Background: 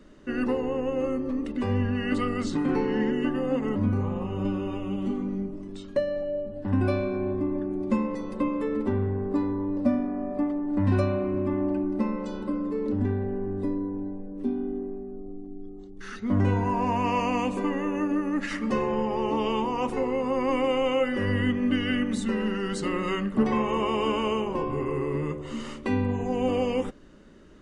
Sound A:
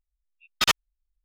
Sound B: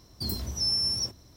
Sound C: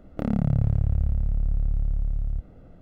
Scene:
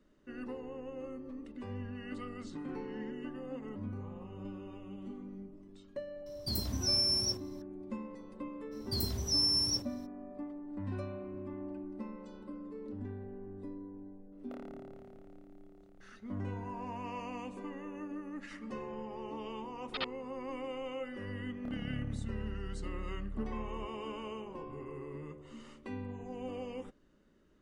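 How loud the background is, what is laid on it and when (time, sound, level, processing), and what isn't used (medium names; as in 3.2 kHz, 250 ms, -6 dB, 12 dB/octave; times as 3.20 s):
background -16 dB
6.26 s: add B -3 dB
8.71 s: add B -2.5 dB, fades 0.02 s
14.32 s: add C -13 dB + high-pass 560 Hz
19.33 s: add A -15.5 dB + steep low-pass 4.6 kHz 72 dB/octave
21.46 s: add C -17.5 dB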